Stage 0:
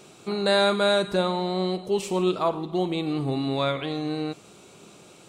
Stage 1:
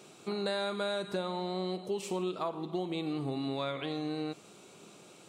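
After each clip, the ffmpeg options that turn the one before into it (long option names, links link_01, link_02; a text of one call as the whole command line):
ffmpeg -i in.wav -af "highpass=130,acompressor=threshold=-26dB:ratio=6,volume=-4.5dB" out.wav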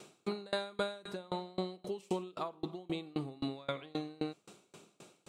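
ffmpeg -i in.wav -af "aeval=exprs='val(0)*pow(10,-29*if(lt(mod(3.8*n/s,1),2*abs(3.8)/1000),1-mod(3.8*n/s,1)/(2*abs(3.8)/1000),(mod(3.8*n/s,1)-2*abs(3.8)/1000)/(1-2*abs(3.8)/1000))/20)':channel_layout=same,volume=3.5dB" out.wav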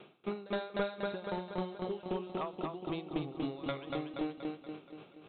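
ffmpeg -i in.wav -filter_complex "[0:a]asplit=2[link_01][link_02];[link_02]aecho=0:1:238|476|714|952|1190|1428|1666:0.708|0.368|0.191|0.0995|0.0518|0.0269|0.014[link_03];[link_01][link_03]amix=inputs=2:normalize=0,aeval=exprs='clip(val(0),-1,0.0299)':channel_layout=same,aresample=8000,aresample=44100" out.wav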